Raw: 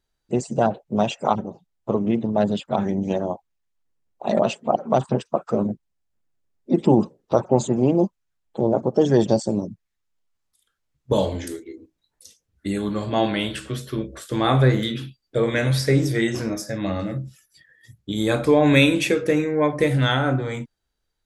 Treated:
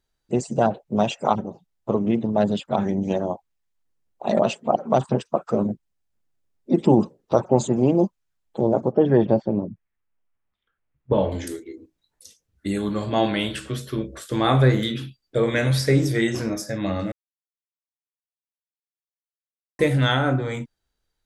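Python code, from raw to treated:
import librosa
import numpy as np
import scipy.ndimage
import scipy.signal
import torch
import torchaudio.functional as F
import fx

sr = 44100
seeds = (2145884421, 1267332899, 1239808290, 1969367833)

y = fx.lowpass(x, sr, hz=2600.0, slope=24, at=(8.92, 11.32))
y = fx.edit(y, sr, fx.silence(start_s=17.12, length_s=2.67), tone=tone)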